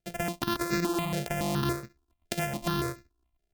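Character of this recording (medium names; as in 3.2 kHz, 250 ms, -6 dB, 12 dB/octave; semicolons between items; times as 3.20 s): a buzz of ramps at a fixed pitch in blocks of 128 samples; notches that jump at a steady rate 7.1 Hz 290–3100 Hz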